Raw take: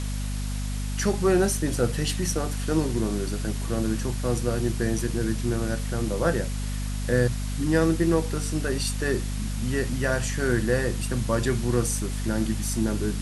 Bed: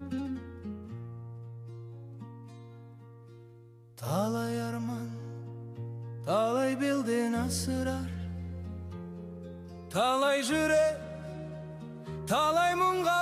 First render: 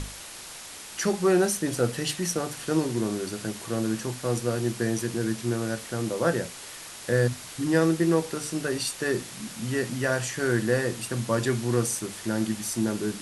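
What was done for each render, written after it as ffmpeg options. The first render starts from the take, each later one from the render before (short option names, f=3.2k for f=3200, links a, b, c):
-af "bandreject=f=50:t=h:w=6,bandreject=f=100:t=h:w=6,bandreject=f=150:t=h:w=6,bandreject=f=200:t=h:w=6,bandreject=f=250:t=h:w=6"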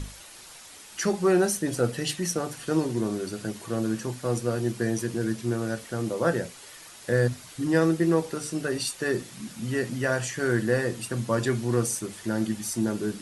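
-af "afftdn=nr=7:nf=-42"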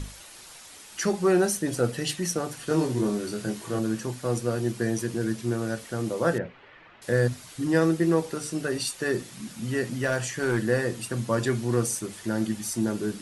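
-filter_complex "[0:a]asettb=1/sr,asplit=3[a][b][c];[a]atrim=end=2.674[d];[b]atrim=start=2.67:end=3.79,asetpts=PTS-STARTPTS,afade=t=in:d=0.004:c=qsin,afade=t=out:st=1.116:d=0.004:c=qsin,asplit=2[e][f];[f]adelay=24,volume=-3.5dB[g];[e][g]amix=inputs=2:normalize=0,atrim=end_sample=49392[h];[c]atrim=start=3.786[i];[d][h]acrossfade=d=0.004:c1=hsin:c2=qsin[j];[j][i]acrossfade=d=0.004:c1=qsin:c2=hsin,asettb=1/sr,asplit=3[k][l][m];[k]atrim=end=6.384[n];[l]atrim=start=6.38:end=7.02,asetpts=PTS-STARTPTS,afade=t=in:d=0.004:c=qsin,afade=t=out:st=0.636:d=0.004:c=qsin,lowpass=f=2.6k:w=0.5412,lowpass=f=2.6k:w=1.3066[o];[m]atrim=start=7.016[p];[n][o]acrossfade=d=0.004:c1=hsin:c2=qsin[q];[q][p]acrossfade=d=0.004:c1=qsin:c2=hsin,asettb=1/sr,asplit=3[r][s][t];[r]atrim=end=9.984[u];[s]atrim=start=9.98:end=10.6,asetpts=PTS-STARTPTS,afade=t=in:d=0.004:c=qsin,afade=t=out:st=0.616:d=0.004:c=qsin,asoftclip=type=hard:threshold=-18dB[v];[t]atrim=start=10.596[w];[u][v]acrossfade=d=0.004:c1=hsin:c2=qsin[x];[x][w]acrossfade=d=0.004:c1=qsin:c2=hsin"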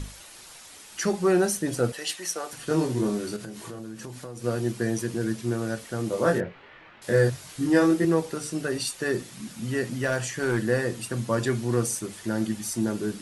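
-filter_complex "[0:a]asettb=1/sr,asplit=3[a][b][c];[a]atrim=end=1.924[d];[b]atrim=start=1.92:end=2.53,asetpts=PTS-STARTPTS,afade=t=in:d=0.004:c=qsin,afade=t=out:st=0.606:d=0.004:c=qsin,highpass=570[e];[c]atrim=start=2.526[f];[d][e]acrossfade=d=0.004:c1=hsin:c2=qsin[g];[g][f]acrossfade=d=0.004:c1=qsin:c2=hsin,asettb=1/sr,asplit=3[h][i][j];[h]atrim=end=3.364[k];[i]atrim=start=3.36:end=4.44,asetpts=PTS-STARTPTS,afade=t=in:d=0.004:c=qsin,afade=t=out:st=1.076:d=0.004:c=qsin,acompressor=threshold=-34dB:ratio=8:attack=3.2:release=140:knee=1:detection=peak[l];[j]atrim=start=4.436[m];[k][l]acrossfade=d=0.004:c1=hsin:c2=qsin[n];[n][m]acrossfade=d=0.004:c1=qsin:c2=hsin,asettb=1/sr,asplit=3[o][p][q];[o]atrim=end=6.104[r];[p]atrim=start=6.1:end=8.05,asetpts=PTS-STARTPTS,afade=t=in:d=0.004:c=qsin,afade=t=out:st=1.946:d=0.004:c=qsin,asplit=2[s][t];[t]adelay=22,volume=-3dB[u];[s][u]amix=inputs=2:normalize=0,atrim=end_sample=85995[v];[q]atrim=start=8.046[w];[r][v]acrossfade=d=0.004:c1=hsin:c2=qsin[x];[x][w]acrossfade=d=0.004:c1=qsin:c2=hsin"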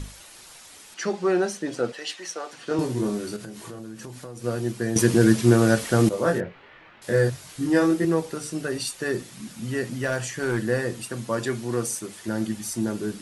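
-filter_complex "[0:a]asettb=1/sr,asplit=3[a][b][c];[a]atrim=end=0.944[d];[b]atrim=start=0.94:end=2.79,asetpts=PTS-STARTPTS,afade=t=in:d=0.004:c=qsin,afade=t=out:st=1.846:d=0.004:c=qsin,highpass=230,lowpass=5.4k[e];[c]atrim=start=2.786[f];[d][e]acrossfade=d=0.004:c1=hsin:c2=qsin[g];[g][f]acrossfade=d=0.004:c1=qsin:c2=hsin,asettb=1/sr,asplit=3[h][i][j];[h]atrim=end=11.024[k];[i]atrim=start=11.02:end=12.28,asetpts=PTS-STARTPTS,afade=t=in:d=0.004:c=qsin,afade=t=out:st=1.256:d=0.004:c=qsin,lowshelf=f=110:g=-11[l];[j]atrim=start=12.276[m];[k][l]acrossfade=d=0.004:c1=hsin:c2=qsin[n];[n][m]acrossfade=d=0.004:c1=qsin:c2=hsin,asplit=3[o][p][q];[o]atrim=end=4.962[r];[p]atrim=start=4.958:end=6.092,asetpts=PTS-STARTPTS,volume=11dB[s];[q]atrim=start=6.088[t];[r][s]acrossfade=d=0.004:c1=hsin:c2=hsin[u];[u][t]acrossfade=d=0.004:c1=hsin:c2=hsin"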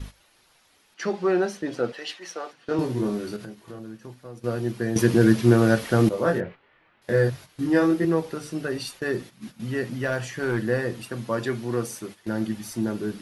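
-af "agate=range=-11dB:threshold=-38dB:ratio=16:detection=peak,equalizer=f=8k:w=1.2:g=-11"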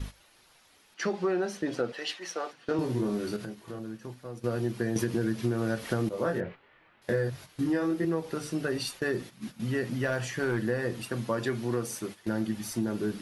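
-af "alimiter=limit=-9dB:level=0:latency=1:release=419,acompressor=threshold=-25dB:ratio=6"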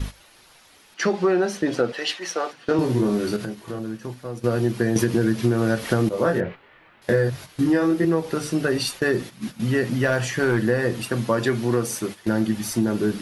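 -af "volume=8.5dB"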